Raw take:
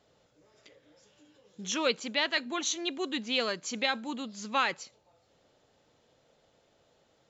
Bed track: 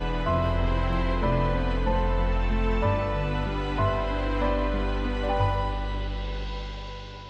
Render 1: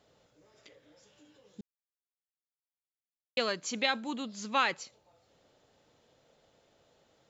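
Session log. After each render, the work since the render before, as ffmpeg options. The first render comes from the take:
-filter_complex "[0:a]asplit=3[a][b][c];[a]atrim=end=1.61,asetpts=PTS-STARTPTS,afade=t=out:st=1.606:d=0.004:c=hsin[d];[b]atrim=start=1.61:end=3.37,asetpts=PTS-STARTPTS,volume=0[e];[c]atrim=start=3.37,asetpts=PTS-STARTPTS,afade=t=in:d=0.004:c=hsin[f];[d][e][f]concat=n=3:v=0:a=1"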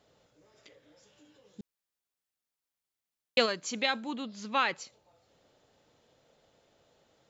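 -filter_complex "[0:a]asplit=3[a][b][c];[a]afade=t=out:st=1.6:d=0.02[d];[b]acontrast=42,afade=t=in:st=1.6:d=0.02,afade=t=out:st=3.45:d=0.02[e];[c]afade=t=in:st=3.45:d=0.02[f];[d][e][f]amix=inputs=3:normalize=0,asettb=1/sr,asplit=3[g][h][i];[g]atrim=end=4.054[j];[h]atrim=start=4.05:end=4.75,asetpts=PTS-STARTPTS,afade=t=in:d=0.004:c=qsin,afade=t=out:st=0.696:d=0.004:c=qsin,lowpass=5.2k[k];[i]atrim=start=4.746[l];[j][k]acrossfade=d=0.004:c1=hsin:c2=qsin[m];[m][l]acrossfade=d=0.004:c1=qsin:c2=hsin"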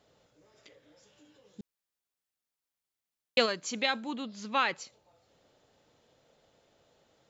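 -af anull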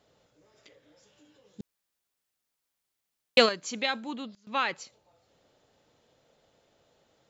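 -filter_complex "[0:a]asettb=1/sr,asplit=3[a][b][c];[a]atrim=end=1.604[d];[b]atrim=start=1.6:end=3.49,asetpts=PTS-STARTPTS,afade=t=in:d=0.004:c=qsin,afade=t=out:st=1.886:d=0.004:c=qsin,acontrast=51[e];[c]atrim=start=3.486[f];[d][e]acrossfade=d=0.004:c1=hsin:c2=qsin[g];[g][f]acrossfade=d=0.004:c1=qsin:c2=hsin,asplit=3[h][i][j];[h]atrim=end=4.35,asetpts=PTS-STARTPTS,afade=t=out:st=4.08:d=0.27:c=log:silence=0.0749894[k];[i]atrim=start=4.35:end=4.47,asetpts=PTS-STARTPTS,volume=-22.5dB[l];[j]atrim=start=4.47,asetpts=PTS-STARTPTS,afade=t=in:d=0.27:c=log:silence=0.0749894[m];[k][l][m]concat=n=3:v=0:a=1"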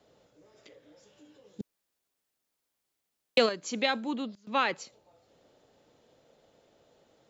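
-filter_complex "[0:a]acrossover=split=200|680|2400[a][b][c][d];[b]acontrast=35[e];[a][e][c][d]amix=inputs=4:normalize=0,alimiter=limit=-10dB:level=0:latency=1:release=405"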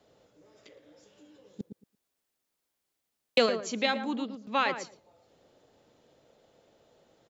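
-filter_complex "[0:a]asplit=2[a][b];[b]adelay=113,lowpass=f=1k:p=1,volume=-7dB,asplit=2[c][d];[d]adelay=113,lowpass=f=1k:p=1,volume=0.18,asplit=2[e][f];[f]adelay=113,lowpass=f=1k:p=1,volume=0.18[g];[a][c][e][g]amix=inputs=4:normalize=0"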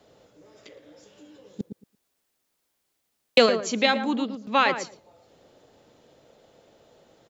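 -af "volume=6.5dB"

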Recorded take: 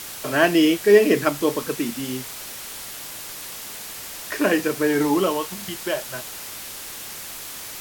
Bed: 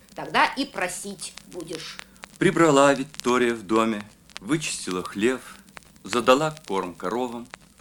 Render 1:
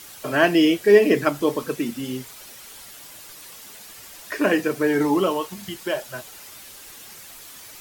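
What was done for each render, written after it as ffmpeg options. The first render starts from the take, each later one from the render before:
-af "afftdn=nr=9:nf=-36"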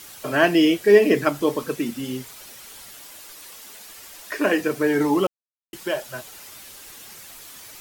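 -filter_complex "[0:a]asettb=1/sr,asplit=3[a][b][c];[a]atrim=end=3.014[d];[b]atrim=start=3.01:end=4.61,asetpts=PTS-STARTPTS,afade=t=in:d=0.004:c=qsin,afade=t=out:st=1.596:d=0.004:c=qsin,equalizer=f=120:t=o:w=1:g=-11.5[e];[c]atrim=start=4.606[f];[d][e]acrossfade=d=0.004:c1=hsin:c2=qsin[g];[g][f]acrossfade=d=0.004:c1=qsin:c2=hsin,asplit=3[h][i][j];[h]atrim=end=5.27,asetpts=PTS-STARTPTS,afade=t=out:st=5.266:d=0.004:c=hsin[k];[i]atrim=start=5.27:end=5.73,asetpts=PTS-STARTPTS,volume=0[l];[j]atrim=start=5.73,asetpts=PTS-STARTPTS,afade=t=in:d=0.004:c=hsin[m];[k][l][m]concat=n=3:v=0:a=1"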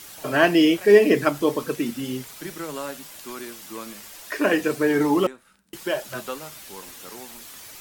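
-filter_complex "[1:a]volume=-16dB[a];[0:a][a]amix=inputs=2:normalize=0"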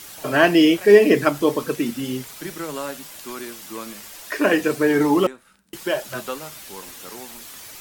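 -af "volume=2.5dB,alimiter=limit=-2dB:level=0:latency=1"

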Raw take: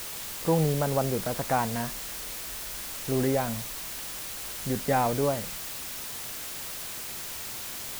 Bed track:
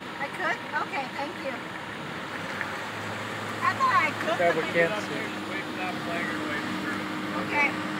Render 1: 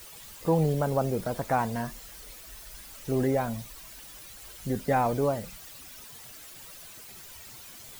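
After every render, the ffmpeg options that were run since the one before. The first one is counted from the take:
-af "afftdn=nr=12:nf=-38"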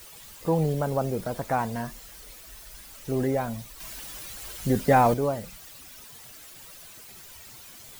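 -filter_complex "[0:a]asettb=1/sr,asplit=3[a][b][c];[a]atrim=end=3.804[d];[b]atrim=start=3.8:end=5.14,asetpts=PTS-STARTPTS,afade=t=in:d=0.004:c=qsin,afade=t=out:st=1.336:d=0.004:c=qsin,acontrast=62[e];[c]atrim=start=5.136[f];[d][e]acrossfade=d=0.004:c1=hsin:c2=qsin[g];[g][f]acrossfade=d=0.004:c1=qsin:c2=hsin"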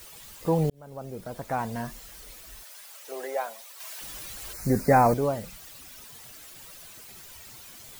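-filter_complex "[0:a]asettb=1/sr,asplit=3[a][b][c];[a]atrim=end=2.634[d];[b]atrim=start=2.63:end=4.01,asetpts=PTS-STARTPTS,afade=t=in:d=0.004:c=qsin,afade=t=out:st=1.376:d=0.004:c=qsin,highpass=f=510:w=0.5412,highpass=f=510:w=1.3066[e];[c]atrim=start=4.006[f];[d][e]acrossfade=d=0.004:c1=hsin:c2=qsin[g];[g][f]acrossfade=d=0.004:c1=qsin:c2=hsin,asettb=1/sr,asplit=3[h][i][j];[h]atrim=end=4.534[k];[i]atrim=start=4.53:end=5.14,asetpts=PTS-STARTPTS,afade=t=in:d=0.004:c=qsin,afade=t=out:st=0.606:d=0.004:c=qsin,asuperstop=centerf=3200:order=4:qfactor=1.6[l];[j]atrim=start=5.136[m];[k][l]acrossfade=d=0.004:c1=hsin:c2=qsin[n];[n][m]acrossfade=d=0.004:c1=qsin:c2=hsin,asplit=2[o][p];[o]atrim=end=0.7,asetpts=PTS-STARTPTS,afade=t=out:st=0.696:d=0.004:c=hsin[q];[p]atrim=start=0.7,asetpts=PTS-STARTPTS,afade=t=in:d=1.25[r];[q][r]concat=n=2:v=0:a=1"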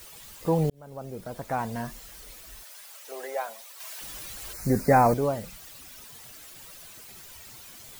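-filter_complex "[0:a]asettb=1/sr,asplit=3[a][b][c];[a]atrim=end=2.994[d];[b]atrim=start=2.99:end=3.49,asetpts=PTS-STARTPTS,afade=t=in:d=0.004:c=qsin,afade=t=out:st=0.496:d=0.004:c=qsin,highpass=f=390:p=1[e];[c]atrim=start=3.486[f];[d][e]acrossfade=d=0.004:c1=hsin:c2=qsin[g];[g][f]acrossfade=d=0.004:c1=qsin:c2=hsin"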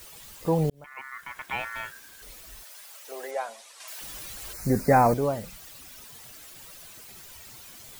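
-filter_complex "[0:a]asettb=1/sr,asplit=3[a][b][c];[a]atrim=end=0.844[d];[b]atrim=start=0.84:end=2.22,asetpts=PTS-STARTPTS,afade=t=in:d=0.004:c=qsin,afade=t=out:st=1.376:d=0.004:c=qsin,aeval=exprs='val(0)*sin(2*PI*1600*n/s)':c=same[e];[c]atrim=start=2.216[f];[d][e]acrossfade=d=0.004:c1=hsin:c2=qsin[g];[g][f]acrossfade=d=0.004:c1=qsin:c2=hsin,asettb=1/sr,asplit=3[h][i][j];[h]atrim=end=3.314[k];[i]atrim=start=3.31:end=3.88,asetpts=PTS-STARTPTS,afade=t=in:d=0.004:c=qsin,afade=t=out:st=0.566:d=0.004:c=qsin,lowpass=f=10k:w=0.5412,lowpass=f=10k:w=1.3066[l];[j]atrim=start=3.876[m];[k][l]acrossfade=d=0.004:c1=hsin:c2=qsin[n];[n][m]acrossfade=d=0.004:c1=qsin:c2=hsin"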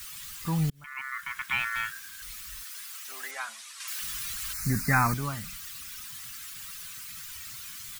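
-af "firequalizer=gain_entry='entry(160,0);entry(510,-22);entry(1200,5)':delay=0.05:min_phase=1"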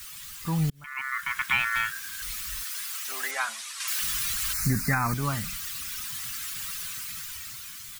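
-af "dynaudnorm=f=230:g=9:m=7dB,alimiter=limit=-14.5dB:level=0:latency=1:release=314"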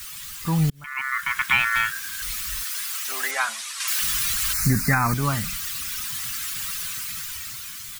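-af "volume=5dB"

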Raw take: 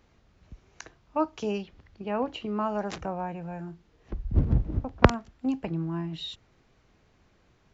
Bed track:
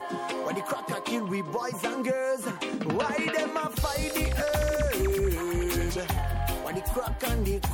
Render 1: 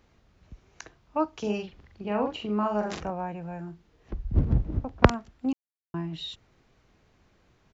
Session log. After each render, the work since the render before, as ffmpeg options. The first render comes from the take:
-filter_complex "[0:a]asplit=3[a][b][c];[a]afade=t=out:st=1.43:d=0.02[d];[b]asplit=2[e][f];[f]adelay=43,volume=-4dB[g];[e][g]amix=inputs=2:normalize=0,afade=t=in:st=1.43:d=0.02,afade=t=out:st=3.09:d=0.02[h];[c]afade=t=in:st=3.09:d=0.02[i];[d][h][i]amix=inputs=3:normalize=0,asplit=3[j][k][l];[j]atrim=end=5.53,asetpts=PTS-STARTPTS,afade=t=out:st=5.526:d=0.004:c=hsin[m];[k]atrim=start=5.53:end=5.94,asetpts=PTS-STARTPTS,volume=0[n];[l]atrim=start=5.94,asetpts=PTS-STARTPTS,afade=t=in:d=0.004:c=hsin[o];[m][n][o]concat=n=3:v=0:a=1"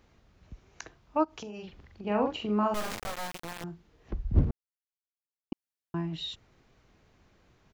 -filter_complex "[0:a]asplit=3[a][b][c];[a]afade=t=out:st=1.23:d=0.02[d];[b]acompressor=threshold=-37dB:ratio=12:attack=3.2:release=140:knee=1:detection=peak,afade=t=in:st=1.23:d=0.02,afade=t=out:st=2.05:d=0.02[e];[c]afade=t=in:st=2.05:d=0.02[f];[d][e][f]amix=inputs=3:normalize=0,asettb=1/sr,asplit=3[g][h][i];[g]atrim=end=2.744[j];[h]atrim=start=2.74:end=3.64,asetpts=PTS-STARTPTS,afade=t=in:d=0.004:c=qsin,afade=t=out:st=0.896:d=0.004:c=qsin,acrusher=bits=3:dc=4:mix=0:aa=0.000001[k];[i]atrim=start=3.636[l];[j][k]acrossfade=d=0.004:c1=hsin:c2=qsin[m];[m][l]acrossfade=d=0.004:c1=qsin:c2=hsin,asplit=3[n][o][p];[n]atrim=end=4.51,asetpts=PTS-STARTPTS,afade=t=out:st=4.506:d=0.004:c=hsin[q];[o]atrim=start=4.51:end=5.52,asetpts=PTS-STARTPTS,volume=0[r];[p]atrim=start=5.52,asetpts=PTS-STARTPTS,afade=t=in:d=0.004:c=hsin[s];[q][r][s]concat=n=3:v=0:a=1"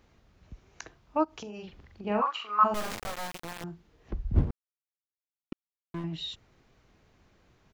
-filter_complex "[0:a]asplit=3[a][b][c];[a]afade=t=out:st=2.2:d=0.02[d];[b]highpass=f=1.2k:t=q:w=9.7,afade=t=in:st=2.2:d=0.02,afade=t=out:st=2.63:d=0.02[e];[c]afade=t=in:st=2.63:d=0.02[f];[d][e][f]amix=inputs=3:normalize=0,asettb=1/sr,asplit=3[g][h][i];[g]atrim=end=4.354[j];[h]atrim=start=4.35:end=6.04,asetpts=PTS-STARTPTS,afade=t=in:d=0.004:c=qsin,afade=t=out:st=1.686:d=0.004:c=qsin,aeval=exprs='sgn(val(0))*max(abs(val(0))-0.0133,0)':c=same[k];[i]atrim=start=6.036[l];[j][k]acrossfade=d=0.004:c1=hsin:c2=qsin[m];[m][l]acrossfade=d=0.004:c1=qsin:c2=hsin"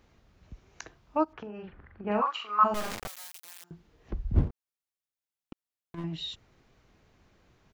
-filter_complex "[0:a]asettb=1/sr,asplit=3[a][b][c];[a]atrim=end=1.334[d];[b]atrim=start=1.33:end=2.11,asetpts=PTS-STARTPTS,afade=t=in:d=0.004:c=qsin,afade=t=out:st=0.776:d=0.004:c=qsin,lowpass=f=1.6k:t=q:w=2.5[e];[c]atrim=start=2.106[f];[d][e]acrossfade=d=0.004:c1=hsin:c2=qsin[g];[g][f]acrossfade=d=0.004:c1=qsin:c2=hsin,asettb=1/sr,asplit=3[h][i][j];[h]atrim=end=3.074[k];[i]atrim=start=3.07:end=3.71,asetpts=PTS-STARTPTS,afade=t=in:d=0.004:c=qsin,afade=t=out:st=0.636:d=0.004:c=qsin,aderivative[l];[j]atrim=start=3.706[m];[k][l]acrossfade=d=0.004:c1=hsin:c2=qsin[n];[n][m]acrossfade=d=0.004:c1=qsin:c2=hsin,asplit=3[o][p][q];[o]afade=t=out:st=4.47:d=0.02[r];[p]acompressor=threshold=-39dB:ratio=6:attack=3.2:release=140:knee=1:detection=peak,afade=t=in:st=4.47:d=0.02,afade=t=out:st=5.97:d=0.02[s];[q]afade=t=in:st=5.97:d=0.02[t];[r][s][t]amix=inputs=3:normalize=0"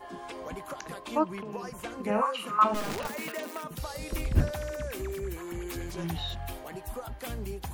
-filter_complex "[1:a]volume=-9dB[a];[0:a][a]amix=inputs=2:normalize=0"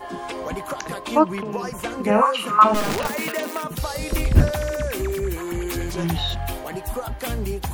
-af "volume=10dB,alimiter=limit=-2dB:level=0:latency=1"

